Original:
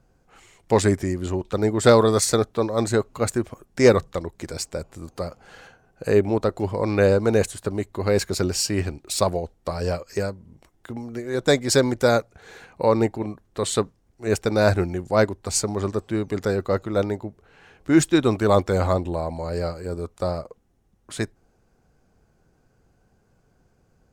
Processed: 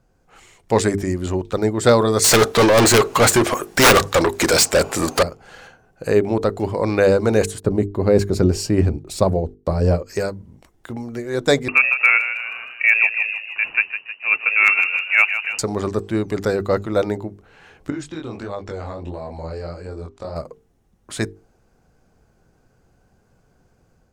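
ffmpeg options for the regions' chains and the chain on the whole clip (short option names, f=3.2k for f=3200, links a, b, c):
-filter_complex "[0:a]asettb=1/sr,asplit=3[a][b][c];[a]atrim=end=2.244[d];[b]atrim=start=2.24:end=5.23,asetpts=PTS-STARTPTS,afade=t=in:d=0.004:c=qsin,afade=t=out:st=2.986:d=0.004:c=qsin,aeval=exprs='(mod(3.16*val(0)+1,2)-1)/3.16':c=same,asplit=2[e][f];[f]highpass=f=720:p=1,volume=31dB,asoftclip=type=tanh:threshold=-9.5dB[g];[e][g]amix=inputs=2:normalize=0,lowpass=f=3.9k:p=1,volume=-6dB,highshelf=f=7.1k:g=8.5[h];[c]atrim=start=5.226[i];[d][h]acrossfade=d=0.004:c1=hsin:c2=qsin[j];[j][i]acrossfade=d=0.004:c1=qsin:c2=hsin,asettb=1/sr,asplit=3[k][l][m];[k]atrim=end=7.604[n];[l]atrim=start=7.6:end=10.06,asetpts=PTS-STARTPTS,afade=t=in:d=0.004:c=qsin,afade=t=out:st=2.456:d=0.004:c=qsin,agate=range=-17dB:threshold=-54dB:ratio=16:release=100:detection=peak,tiltshelf=f=790:g=7.5[o];[m]atrim=start=10.056[p];[n][o]acrossfade=d=0.004:c1=hsin:c2=qsin[q];[q][p]acrossfade=d=0.004:c1=qsin:c2=hsin,asettb=1/sr,asplit=3[r][s][t];[r]atrim=end=11.684[u];[s]atrim=start=11.68:end=15.59,asetpts=PTS-STARTPTS,afade=t=in:d=0.004:c=qsin,afade=t=out:st=3.906:d=0.004:c=qsin,lowpass=f=2.4k:t=q:w=0.5098,lowpass=f=2.4k:t=q:w=0.6013,lowpass=f=2.4k:t=q:w=0.9,lowpass=f=2.4k:t=q:w=2.563,afreqshift=-2800,asoftclip=type=hard:threshold=-6.5dB,asplit=7[v][w][x][y][z][aa][ab];[w]adelay=156,afreqshift=50,volume=-10dB[ac];[x]adelay=312,afreqshift=100,volume=-15dB[ad];[y]adelay=468,afreqshift=150,volume=-20.1dB[ae];[z]adelay=624,afreqshift=200,volume=-25.1dB[af];[aa]adelay=780,afreqshift=250,volume=-30.1dB[ag];[ab]adelay=936,afreqshift=300,volume=-35.2dB[ah];[v][ac][ad][ae][af][ag][ah]amix=inputs=7:normalize=0,atrim=end_sample=172431[ai];[t]atrim=start=15.586[aj];[u][ai]acrossfade=d=0.004:c1=hsin:c2=qsin[ak];[ak][aj]acrossfade=d=0.004:c1=qsin:c2=hsin,asettb=1/sr,asplit=3[al][am][an];[al]atrim=end=17.904[ao];[am]atrim=start=17.9:end=20.36,asetpts=PTS-STARTPTS,afade=t=in:d=0.004:c=qsin,afade=t=out:st=2.456:d=0.004:c=qsin,lowpass=5.9k,acompressor=threshold=-27dB:ratio=6:attack=3.2:release=140:knee=1:detection=peak,flanger=delay=20:depth=5.7:speed=1.5[ap];[an]atrim=start=20.356[aq];[ao][ap]acrossfade=d=0.004:c1=hsin:c2=qsin[ar];[ar][aq]acrossfade=d=0.004:c1=qsin:c2=hsin,bandreject=f=50:t=h:w=6,bandreject=f=100:t=h:w=6,bandreject=f=150:t=h:w=6,bandreject=f=200:t=h:w=6,bandreject=f=250:t=h:w=6,bandreject=f=300:t=h:w=6,bandreject=f=350:t=h:w=6,bandreject=f=400:t=h:w=6,bandreject=f=450:t=h:w=6,dynaudnorm=f=100:g=5:m=4dB"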